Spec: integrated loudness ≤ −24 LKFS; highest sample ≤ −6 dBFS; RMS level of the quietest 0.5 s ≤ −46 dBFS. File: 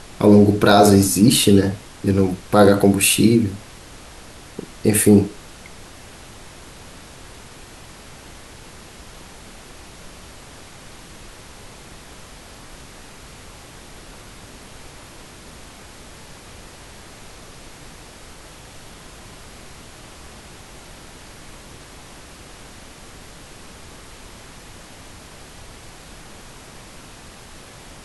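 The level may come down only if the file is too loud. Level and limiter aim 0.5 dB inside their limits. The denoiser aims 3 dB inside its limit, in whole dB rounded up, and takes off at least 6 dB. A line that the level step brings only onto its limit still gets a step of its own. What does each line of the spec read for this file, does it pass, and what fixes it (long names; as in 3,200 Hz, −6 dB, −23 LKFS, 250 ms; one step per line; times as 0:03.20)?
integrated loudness −15.0 LKFS: out of spec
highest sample −1.5 dBFS: out of spec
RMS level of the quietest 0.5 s −41 dBFS: out of spec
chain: level −9.5 dB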